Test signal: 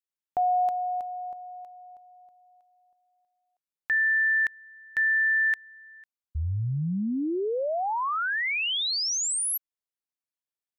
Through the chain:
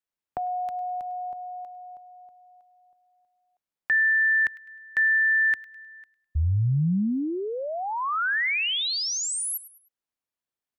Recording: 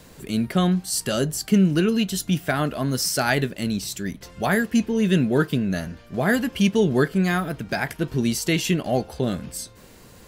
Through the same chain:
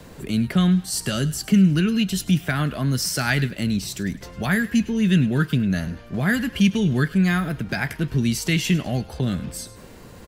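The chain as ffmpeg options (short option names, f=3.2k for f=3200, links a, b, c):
-filter_complex "[0:a]highshelf=f=2.7k:g=-7.5,acrossover=split=220|1400[a][b][c];[b]acompressor=threshold=-36dB:ratio=10:attack=10:release=150:knee=6:detection=rms[d];[c]aecho=1:1:103|206|309:0.158|0.0571|0.0205[e];[a][d][e]amix=inputs=3:normalize=0,volume=5.5dB"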